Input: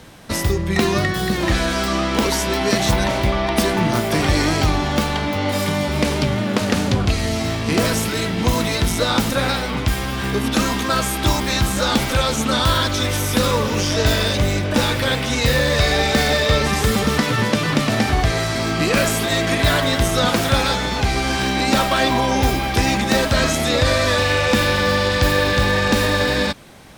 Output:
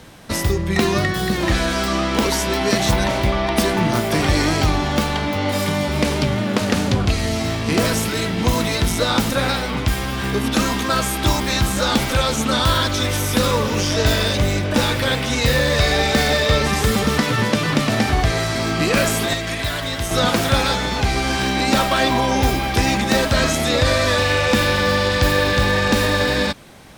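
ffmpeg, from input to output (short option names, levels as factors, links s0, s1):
-filter_complex "[0:a]asettb=1/sr,asplit=3[s0][s1][s2];[s0]atrim=end=19.334[s3];[s1]atrim=start=19.33:end=20.11,asetpts=PTS-STARTPTS,afade=t=in:d=0.004:c=qsin,afade=t=out:st=0.776:d=0.004:c=qsin,acrossover=split=100|540|1600[s4][s5][s6][s7];[s4]acompressor=threshold=0.0447:ratio=3[s8];[s5]acompressor=threshold=0.0224:ratio=3[s9];[s6]acompressor=threshold=0.0224:ratio=3[s10];[s7]acompressor=threshold=0.0501:ratio=3[s11];[s8][s9][s10][s11]amix=inputs=4:normalize=0[s12];[s2]atrim=start=20.106[s13];[s3][s12]acrossfade=d=0.004:c1=hsin:c2=qsin[s14];[s14][s13]acrossfade=d=0.004:c1=qsin:c2=hsin"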